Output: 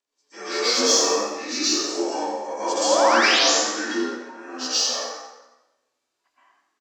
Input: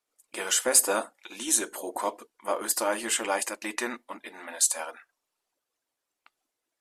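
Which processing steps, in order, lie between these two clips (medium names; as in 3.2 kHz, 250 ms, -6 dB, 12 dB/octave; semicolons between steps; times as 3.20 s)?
frequency axis rescaled in octaves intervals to 87%; in parallel at -11 dB: saturation -23.5 dBFS, distortion -10 dB; 2.77–3.39 s: on the sum: painted sound rise 500–7600 Hz -22 dBFS; 3.79–4.30 s: inharmonic resonator 80 Hz, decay 0.27 s, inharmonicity 0.008; plate-style reverb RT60 1 s, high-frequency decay 0.85×, pre-delay 110 ms, DRR -8.5 dB; harmonic-percussive split percussive -12 dB; on a send: frequency-shifting echo 85 ms, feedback 33%, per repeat +66 Hz, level -11 dB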